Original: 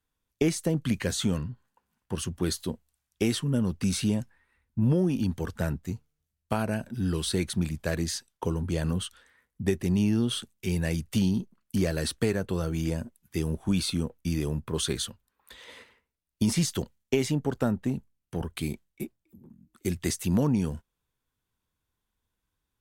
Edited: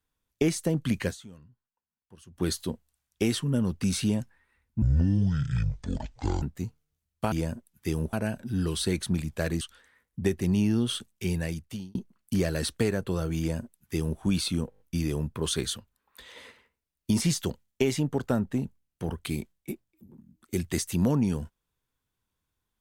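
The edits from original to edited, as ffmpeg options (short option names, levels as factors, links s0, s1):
-filter_complex "[0:a]asplit=14[s0][s1][s2][s3][s4][s5][s6][s7][s8][s9][s10][s11][s12][s13];[s0]atrim=end=1.51,asetpts=PTS-STARTPTS,afade=t=out:st=1.08:d=0.43:c=exp:silence=0.0891251[s14];[s1]atrim=start=1.51:end=1.98,asetpts=PTS-STARTPTS,volume=0.0891[s15];[s2]atrim=start=1.98:end=4.824,asetpts=PTS-STARTPTS,afade=t=in:d=0.43:c=exp:silence=0.0891251[s16];[s3]atrim=start=4.82:end=5.7,asetpts=PTS-STARTPTS,asetrate=24255,aresample=44100[s17];[s4]atrim=start=5.696:end=6.602[s18];[s5]atrim=start=12.808:end=13.622[s19];[s6]atrim=start=6.598:end=8.082[s20];[s7]atrim=start=9.028:end=11.37,asetpts=PTS-STARTPTS,afade=t=out:st=1.652:d=0.69[s21];[s8]atrim=start=11.37:end=14.142,asetpts=PTS-STARTPTS,afade=t=in:d=0.004:c=hsin[s22];[s9]atrim=start=14.118:end=14.142[s23];[s10]atrim=start=14.118:end=14.142[s24];[s11]atrim=start=14.118:end=14.142[s25];[s12]atrim=start=14.118:end=14.142[s26];[s13]atrim=start=14.118[s27];[s14][s15][s16]concat=n=3:v=0:a=1[s28];[s28][s17]acrossfade=d=0.004:c1=hsin:c2=hsin[s29];[s29][s18]acrossfade=d=0.004:c1=hsin:c2=hsin[s30];[s30][s19]acrossfade=d=0.004:c1=hsin:c2=hsin[s31];[s31][s20]acrossfade=d=0.004:c1=hsin:c2=hsin[s32];[s21][s22]concat=n=2:v=0:a=1[s33];[s32][s33]acrossfade=d=0.004:c1=hsin:c2=hsin[s34];[s34][s23]acrossfade=d=0.004:c1=hsin:c2=hsin[s35];[s35][s24]acrossfade=d=0.004:c1=hsin:c2=hsin[s36];[s36][s25]acrossfade=d=0.004:c1=hsin:c2=hsin[s37];[s37][s26]acrossfade=d=0.004:c1=hsin:c2=hsin[s38];[s38][s27]acrossfade=d=0.004:c1=hsin:c2=hsin"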